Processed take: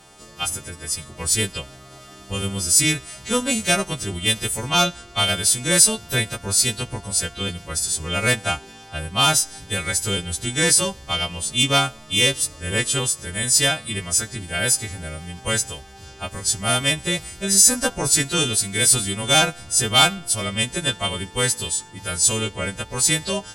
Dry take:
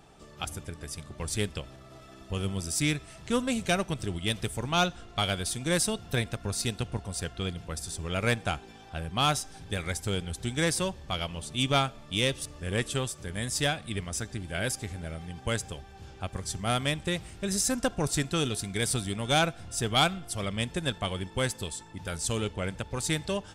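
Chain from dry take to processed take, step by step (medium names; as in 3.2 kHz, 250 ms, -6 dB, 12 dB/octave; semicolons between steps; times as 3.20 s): partials quantised in pitch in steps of 2 st; trim +5.5 dB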